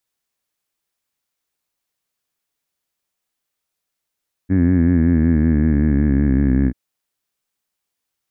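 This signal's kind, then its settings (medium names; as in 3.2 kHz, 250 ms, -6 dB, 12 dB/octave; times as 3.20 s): formant vowel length 2.24 s, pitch 91.3 Hz, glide -6 st, F1 260 Hz, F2 1.7 kHz, F3 2.2 kHz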